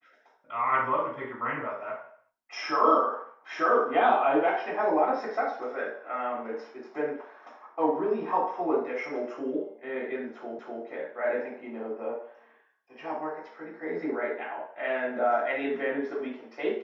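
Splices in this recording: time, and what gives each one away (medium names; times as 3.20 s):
10.59 s: repeat of the last 0.25 s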